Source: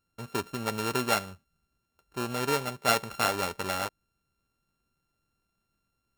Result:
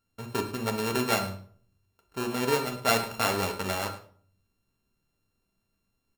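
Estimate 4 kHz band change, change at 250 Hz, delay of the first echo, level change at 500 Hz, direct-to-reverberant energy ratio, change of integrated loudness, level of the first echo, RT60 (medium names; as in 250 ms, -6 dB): +1.0 dB, +3.5 dB, 105 ms, +2.5 dB, 4.0 dB, +1.0 dB, -16.0 dB, 0.50 s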